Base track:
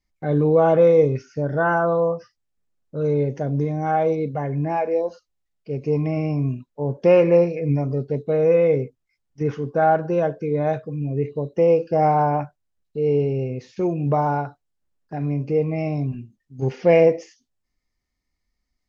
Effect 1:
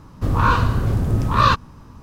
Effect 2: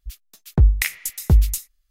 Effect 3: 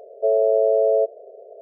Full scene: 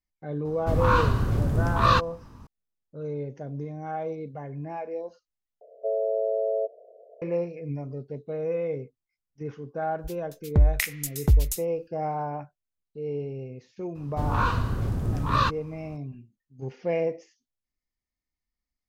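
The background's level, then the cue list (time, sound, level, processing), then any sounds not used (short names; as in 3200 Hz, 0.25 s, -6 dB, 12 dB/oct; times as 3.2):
base track -12 dB
0.45 add 1 -5 dB
5.61 replace with 3 -8 dB + notch 400 Hz, Q 7.8
9.98 add 2 -4.5 dB
13.95 add 1 -8 dB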